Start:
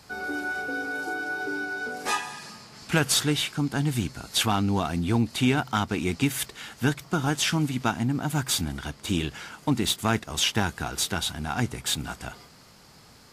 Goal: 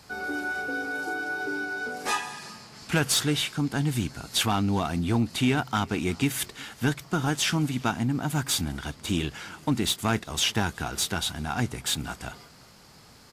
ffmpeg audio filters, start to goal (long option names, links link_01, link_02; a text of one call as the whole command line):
ffmpeg -i in.wav -filter_complex "[0:a]asoftclip=type=tanh:threshold=-13dB,asplit=2[link_01][link_02];[link_02]adelay=367.3,volume=-25dB,highshelf=frequency=4000:gain=-8.27[link_03];[link_01][link_03]amix=inputs=2:normalize=0" out.wav